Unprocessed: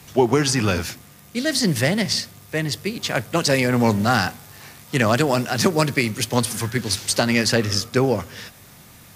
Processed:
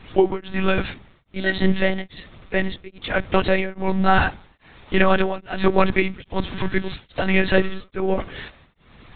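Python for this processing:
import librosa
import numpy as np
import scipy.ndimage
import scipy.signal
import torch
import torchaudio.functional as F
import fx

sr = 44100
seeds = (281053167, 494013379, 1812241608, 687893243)

y = fx.lpc_monotone(x, sr, seeds[0], pitch_hz=190.0, order=16)
y = y * np.abs(np.cos(np.pi * 1.2 * np.arange(len(y)) / sr))
y = F.gain(torch.from_numpy(y), 3.5).numpy()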